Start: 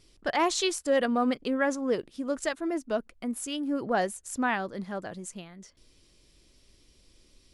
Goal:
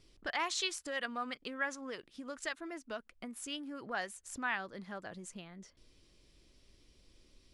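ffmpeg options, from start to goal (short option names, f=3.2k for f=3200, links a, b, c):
-filter_complex "[0:a]highshelf=f=7.7k:g=-10,acrossover=split=1100[a][b];[a]acompressor=threshold=-41dB:ratio=6[c];[c][b]amix=inputs=2:normalize=0,volume=-3dB"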